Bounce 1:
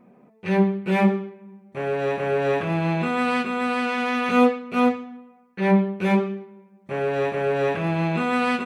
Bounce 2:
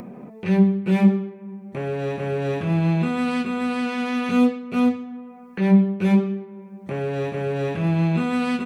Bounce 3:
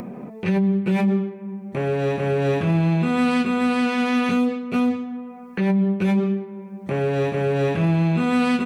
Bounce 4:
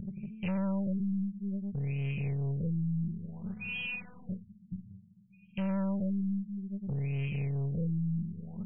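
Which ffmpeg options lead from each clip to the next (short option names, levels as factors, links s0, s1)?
-filter_complex "[0:a]acrossover=split=280|3000[s0][s1][s2];[s1]acompressor=threshold=0.0178:ratio=2[s3];[s0][s3][s2]amix=inputs=3:normalize=0,lowshelf=f=400:g=6.5,acompressor=mode=upward:threshold=0.0398:ratio=2.5"
-af "alimiter=limit=0.141:level=0:latency=1:release=50,volume=1.58"
-af "afftfilt=real='re*(1-between(b*sr/4096,220,2300))':imag='im*(1-between(b*sr/4096,220,2300))':win_size=4096:overlap=0.75,aeval=exprs='(tanh(31.6*val(0)+0.3)-tanh(0.3))/31.6':c=same,afftfilt=real='re*lt(b*sr/1024,300*pow(3300/300,0.5+0.5*sin(2*PI*0.58*pts/sr)))':imag='im*lt(b*sr/1024,300*pow(3300/300,0.5+0.5*sin(2*PI*0.58*pts/sr)))':win_size=1024:overlap=0.75"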